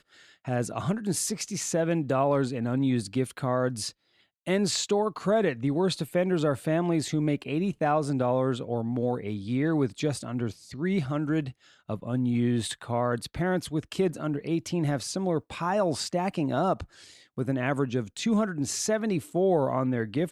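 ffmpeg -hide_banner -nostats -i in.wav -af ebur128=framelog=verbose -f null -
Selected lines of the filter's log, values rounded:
Integrated loudness:
  I:         -28.0 LUFS
  Threshold: -38.2 LUFS
Loudness range:
  LRA:         2.7 LU
  Threshold: -48.3 LUFS
  LRA low:   -29.5 LUFS
  LRA high:  -26.8 LUFS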